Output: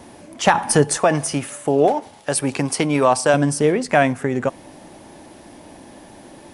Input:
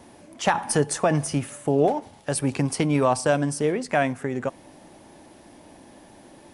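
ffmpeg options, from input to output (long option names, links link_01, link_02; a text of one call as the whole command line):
ffmpeg -i in.wav -filter_complex "[0:a]asettb=1/sr,asplit=3[link_01][link_02][link_03];[link_01]atrim=end=0.984[link_04];[link_02]atrim=start=0.98:end=3.34,asetpts=PTS-STARTPTS,afade=type=in:duration=0.004:curve=qsin,afade=type=out:start_time=2.356:duration=0.004:curve=qsin,lowshelf=frequency=210:gain=-10.5[link_05];[link_03]atrim=start=3.336[link_06];[link_04][link_05]acrossfade=duration=0.004:curve1=hsin:curve2=qsin[link_07];[link_07][link_06]acrossfade=duration=0.004:curve1=qsin:curve2=hsin,volume=6.5dB" out.wav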